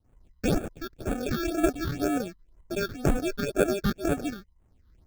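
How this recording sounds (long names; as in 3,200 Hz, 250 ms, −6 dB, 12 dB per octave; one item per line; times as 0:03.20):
aliases and images of a low sample rate 1,000 Hz, jitter 0%
phaser sweep stages 6, 2 Hz, lowest notch 640–5,000 Hz
amplitude modulation by smooth noise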